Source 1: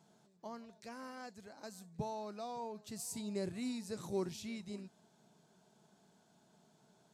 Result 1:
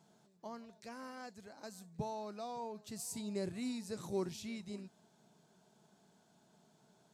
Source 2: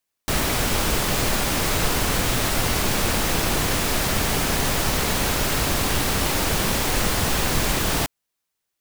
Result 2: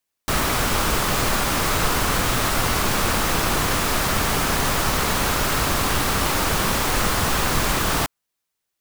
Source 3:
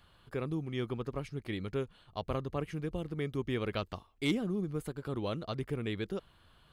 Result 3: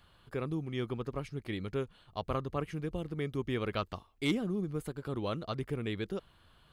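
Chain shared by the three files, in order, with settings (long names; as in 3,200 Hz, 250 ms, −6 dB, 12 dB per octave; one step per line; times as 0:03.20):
dynamic equaliser 1,200 Hz, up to +6 dB, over −43 dBFS, Q 1.7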